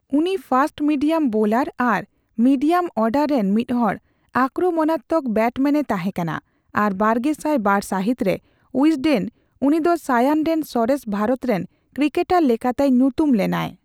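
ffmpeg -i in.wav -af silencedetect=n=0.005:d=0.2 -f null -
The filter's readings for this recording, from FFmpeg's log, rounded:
silence_start: 2.05
silence_end: 2.38 | silence_duration: 0.33
silence_start: 3.98
silence_end: 4.34 | silence_duration: 0.36
silence_start: 6.40
silence_end: 6.74 | silence_duration: 0.34
silence_start: 8.39
silence_end: 8.74 | silence_duration: 0.35
silence_start: 9.29
silence_end: 9.62 | silence_duration: 0.32
silence_start: 11.66
silence_end: 11.93 | silence_duration: 0.27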